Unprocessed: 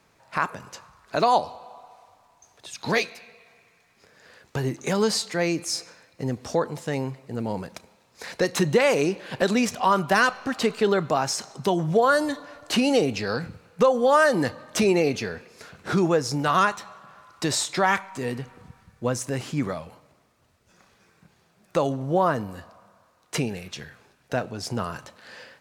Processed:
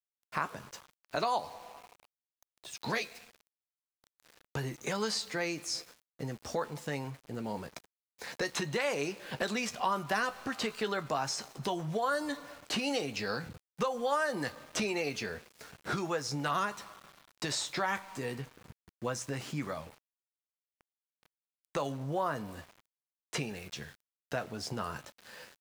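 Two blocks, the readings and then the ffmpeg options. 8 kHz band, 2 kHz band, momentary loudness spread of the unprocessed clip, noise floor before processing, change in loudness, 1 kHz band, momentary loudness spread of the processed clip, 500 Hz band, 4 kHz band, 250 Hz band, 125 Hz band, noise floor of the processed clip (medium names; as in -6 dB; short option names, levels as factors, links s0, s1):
-8.5 dB, -9.0 dB, 16 LU, -63 dBFS, -11.0 dB, -10.0 dB, 15 LU, -12.5 dB, -7.0 dB, -12.0 dB, -10.5 dB, under -85 dBFS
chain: -filter_complex "[0:a]acrossover=split=820|7400[s0][s1][s2];[s0]acompressor=threshold=0.0316:ratio=4[s3];[s1]acompressor=threshold=0.0501:ratio=4[s4];[s2]acompressor=threshold=0.00447:ratio=4[s5];[s3][s4][s5]amix=inputs=3:normalize=0,asplit=2[s6][s7];[s7]adelay=14,volume=0.316[s8];[s6][s8]amix=inputs=2:normalize=0,aeval=exprs='val(0)*gte(abs(val(0)),0.00596)':c=same,volume=0.531"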